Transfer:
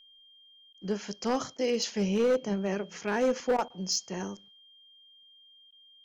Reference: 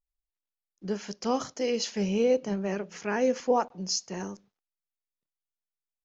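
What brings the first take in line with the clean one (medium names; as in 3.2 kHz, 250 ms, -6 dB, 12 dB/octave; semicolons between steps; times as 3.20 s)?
clip repair -20.5 dBFS; band-stop 3.2 kHz, Q 30; interpolate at 0.73/1.57/3.57/5.71 s, 12 ms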